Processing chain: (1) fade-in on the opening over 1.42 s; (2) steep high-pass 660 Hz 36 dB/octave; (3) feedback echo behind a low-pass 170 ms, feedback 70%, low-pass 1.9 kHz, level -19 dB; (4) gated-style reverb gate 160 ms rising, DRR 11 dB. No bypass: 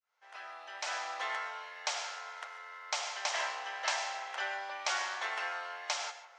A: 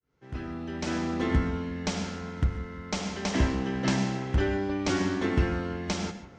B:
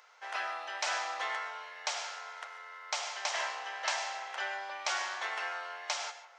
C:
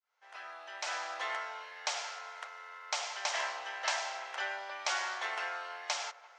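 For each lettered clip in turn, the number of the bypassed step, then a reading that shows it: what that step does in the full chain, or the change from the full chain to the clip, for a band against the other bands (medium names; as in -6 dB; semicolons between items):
2, 500 Hz band +13.0 dB; 1, momentary loudness spread change -4 LU; 4, echo-to-direct -10.0 dB to -18.0 dB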